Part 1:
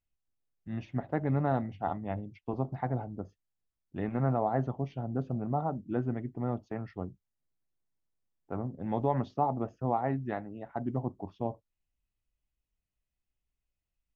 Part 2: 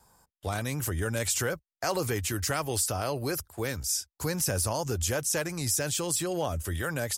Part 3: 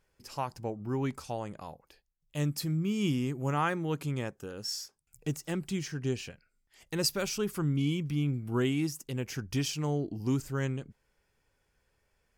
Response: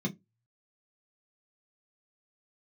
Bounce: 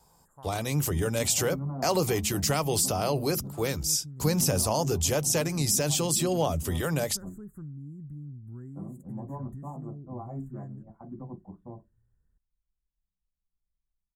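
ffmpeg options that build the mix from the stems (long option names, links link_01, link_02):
-filter_complex "[0:a]acrusher=bits=7:mode=log:mix=0:aa=0.000001,lowpass=frequency=1000:width_type=q:width=1.6,asubboost=boost=7.5:cutoff=58,adelay=250,volume=-17.5dB,asplit=2[link_01][link_02];[link_02]volume=-5dB[link_03];[1:a]equalizer=frequency=100:width_type=o:width=0.67:gain=-6,equalizer=frequency=1600:width_type=o:width=0.67:gain=-9,equalizer=frequency=10000:width_type=o:width=0.67:gain=-4,volume=1.5dB,asplit=2[link_04][link_05];[link_05]volume=-21dB[link_06];[2:a]asubboost=boost=9.5:cutoff=200,volume=-17dB[link_07];[link_01][link_07]amix=inputs=2:normalize=0,asuperstop=centerf=3700:order=20:qfactor=0.72,acompressor=threshold=-45dB:ratio=4,volume=0dB[link_08];[3:a]atrim=start_sample=2205[link_09];[link_03][link_06]amix=inputs=2:normalize=0[link_10];[link_10][link_09]afir=irnorm=-1:irlink=0[link_11];[link_04][link_08][link_11]amix=inputs=3:normalize=0,dynaudnorm=framelen=350:gausssize=3:maxgain=3.5dB"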